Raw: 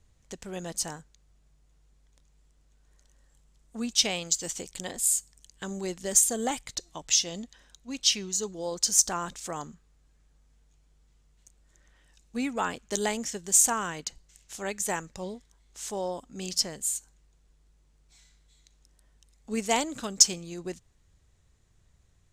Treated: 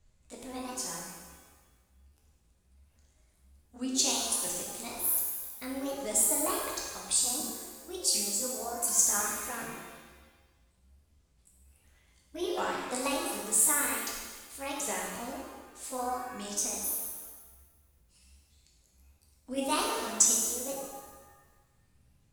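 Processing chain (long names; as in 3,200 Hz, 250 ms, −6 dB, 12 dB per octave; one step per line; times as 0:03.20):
pitch shifter swept by a sawtooth +7.5 semitones, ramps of 740 ms
reverb with rising layers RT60 1.3 s, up +7 semitones, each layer −8 dB, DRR −2.5 dB
level −5.5 dB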